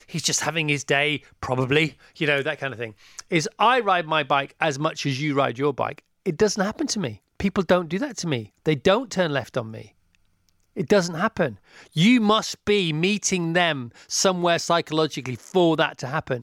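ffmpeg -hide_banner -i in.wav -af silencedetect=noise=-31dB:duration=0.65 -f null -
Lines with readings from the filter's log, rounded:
silence_start: 9.82
silence_end: 10.77 | silence_duration: 0.95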